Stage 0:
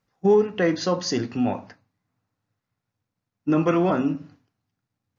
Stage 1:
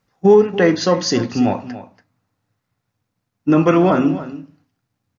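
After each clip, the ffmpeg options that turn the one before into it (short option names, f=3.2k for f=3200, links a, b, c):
-af "aecho=1:1:284:0.188,volume=7dB"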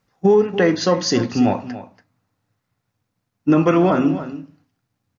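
-af "alimiter=limit=-6dB:level=0:latency=1:release=291"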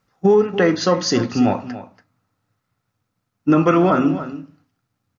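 -af "equalizer=f=1.3k:t=o:w=0.21:g=7"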